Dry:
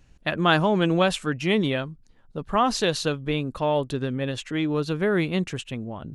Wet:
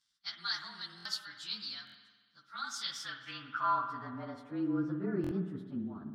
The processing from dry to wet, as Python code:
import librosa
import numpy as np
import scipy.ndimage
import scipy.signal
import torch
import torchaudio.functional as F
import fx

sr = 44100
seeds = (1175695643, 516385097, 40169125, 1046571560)

p1 = fx.partial_stretch(x, sr, pct=109)
p2 = fx.curve_eq(p1, sr, hz=(140.0, 230.0, 490.0, 1400.0, 2300.0, 5400.0), db=(0, 4, -19, 9, -8, 1))
p3 = fx.rider(p2, sr, range_db=5, speed_s=0.5)
p4 = p2 + F.gain(torch.from_numpy(p3), 2.0).numpy()
p5 = fx.filter_sweep_bandpass(p4, sr, from_hz=4500.0, to_hz=380.0, start_s=2.63, end_s=4.78, q=3.0)
p6 = p5 + fx.echo_single(p5, sr, ms=276, db=-23.5, dry=0)
p7 = fx.rev_spring(p6, sr, rt60_s=1.5, pass_ms=(56,), chirp_ms=65, drr_db=7.0)
p8 = fx.buffer_glitch(p7, sr, at_s=(0.96, 1.85, 5.22), block=1024, repeats=3)
y = F.gain(torch.from_numpy(p8), -5.0).numpy()